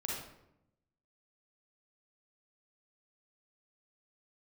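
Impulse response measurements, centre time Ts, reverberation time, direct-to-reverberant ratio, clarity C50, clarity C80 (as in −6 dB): 63 ms, 0.80 s, −4.0 dB, −1.0 dB, 4.0 dB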